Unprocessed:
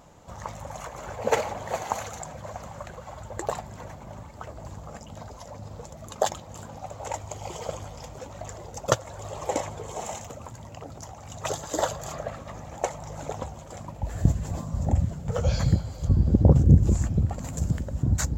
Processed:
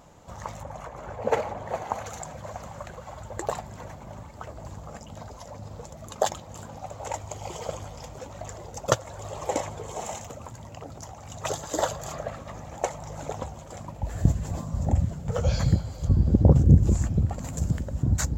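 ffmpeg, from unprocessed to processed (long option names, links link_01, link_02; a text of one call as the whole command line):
ffmpeg -i in.wav -filter_complex "[0:a]asettb=1/sr,asplit=3[link_01][link_02][link_03];[link_01]atrim=end=0.634[link_04];[link_02]atrim=start=0.63:end=2.06,asetpts=PTS-STARTPTS,afade=type=in:duration=0.004:curve=qsin,afade=type=out:start_time=1.426:duration=0.004:curve=qsin,highshelf=frequency=2600:gain=-11.5[link_05];[link_03]atrim=start=2.056[link_06];[link_04][link_05]acrossfade=duration=0.004:curve1=hsin:curve2=qsin[link_07];[link_07][link_06]acrossfade=duration=0.004:curve1=qsin:curve2=hsin" out.wav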